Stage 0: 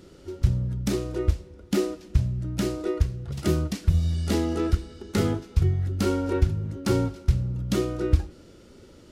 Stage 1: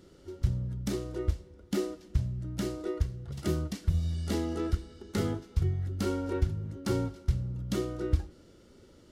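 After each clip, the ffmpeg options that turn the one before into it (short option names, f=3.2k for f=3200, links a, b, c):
-af "bandreject=f=2.5k:w=14,volume=-6.5dB"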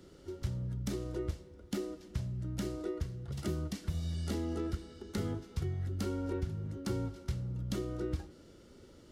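-filter_complex "[0:a]acrossover=split=100|390[a][b][c];[a]acompressor=threshold=-40dB:ratio=4[d];[b]acompressor=threshold=-36dB:ratio=4[e];[c]acompressor=threshold=-43dB:ratio=4[f];[d][e][f]amix=inputs=3:normalize=0"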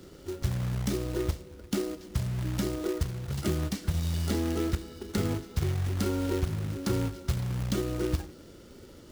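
-af "acrusher=bits=3:mode=log:mix=0:aa=0.000001,volume=6.5dB"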